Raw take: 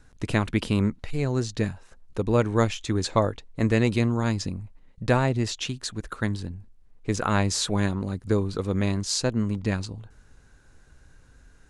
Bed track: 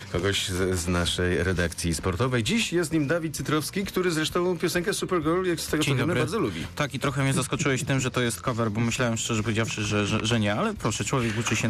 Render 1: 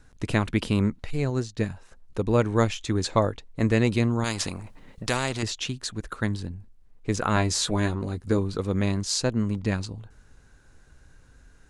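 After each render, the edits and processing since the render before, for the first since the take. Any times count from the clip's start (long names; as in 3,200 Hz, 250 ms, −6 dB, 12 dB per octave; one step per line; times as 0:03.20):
0:01.30–0:01.70: expander for the loud parts, over −39 dBFS
0:04.24–0:05.43: every bin compressed towards the loudest bin 2 to 1
0:07.35–0:08.38: double-tracking delay 13 ms −7 dB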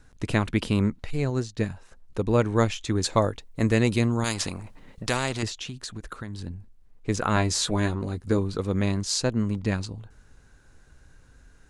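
0:03.03–0:04.34: high-shelf EQ 8,300 Hz +10.5 dB
0:05.48–0:06.47: downward compressor, threshold −31 dBFS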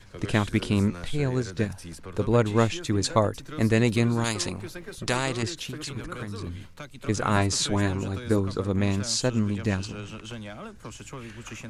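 mix in bed track −14.5 dB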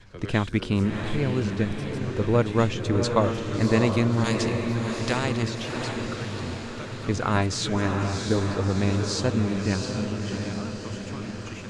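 high-frequency loss of the air 68 metres
feedback delay with all-pass diffusion 670 ms, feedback 59%, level −5 dB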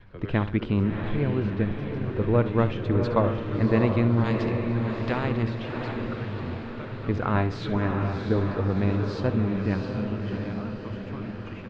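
high-frequency loss of the air 370 metres
repeating echo 68 ms, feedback 38%, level −14 dB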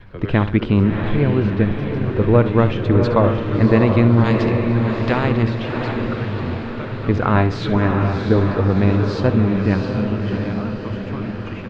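level +8.5 dB
brickwall limiter −2 dBFS, peak gain reduction 3 dB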